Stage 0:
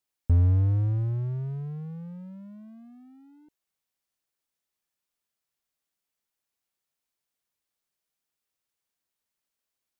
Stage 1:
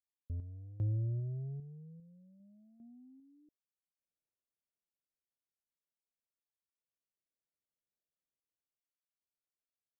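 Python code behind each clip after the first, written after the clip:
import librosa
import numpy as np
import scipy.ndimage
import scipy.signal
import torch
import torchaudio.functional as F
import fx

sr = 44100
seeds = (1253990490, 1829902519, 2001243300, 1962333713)

y = scipy.signal.sosfilt(scipy.signal.butter(16, 680.0, 'lowpass', fs=sr, output='sos'), x)
y = fx.tremolo_random(y, sr, seeds[0], hz=2.5, depth_pct=90)
y = y * librosa.db_to_amplitude(-6.5)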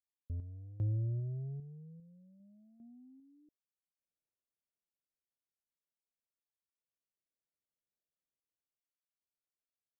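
y = x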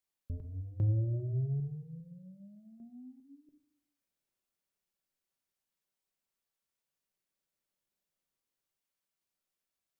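y = fx.room_shoebox(x, sr, seeds[1], volume_m3=810.0, walls='furnished', distance_m=1.1)
y = y * librosa.db_to_amplitude(5.0)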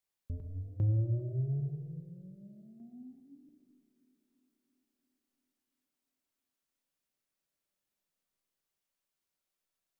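y = fx.echo_banded(x, sr, ms=341, feedback_pct=67, hz=330.0, wet_db=-16.5)
y = fx.rev_freeverb(y, sr, rt60_s=0.99, hf_ratio=0.9, predelay_ms=75, drr_db=8.5)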